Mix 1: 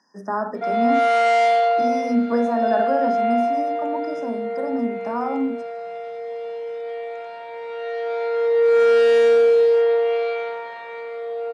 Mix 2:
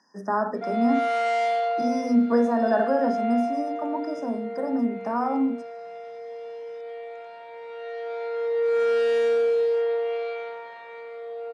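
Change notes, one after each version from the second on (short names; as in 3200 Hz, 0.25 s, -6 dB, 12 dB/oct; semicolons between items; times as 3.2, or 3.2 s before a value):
background -7.0 dB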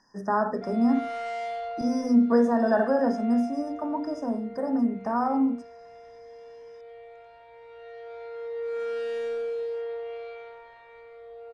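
background -9.0 dB; master: remove HPF 180 Hz 24 dB/oct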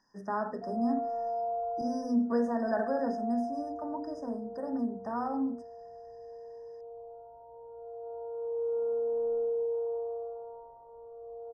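speech -8.0 dB; background: add steep low-pass 1000 Hz 48 dB/oct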